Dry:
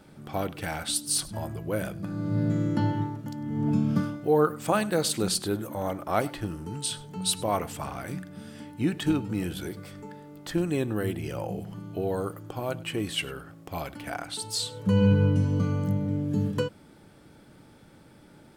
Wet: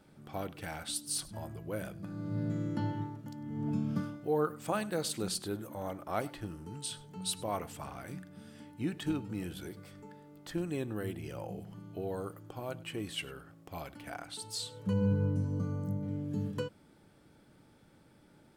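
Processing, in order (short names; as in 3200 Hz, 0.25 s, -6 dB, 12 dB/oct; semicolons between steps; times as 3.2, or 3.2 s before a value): 14.93–16.03 bell 2800 Hz -12 dB 1.3 oct; gain -8.5 dB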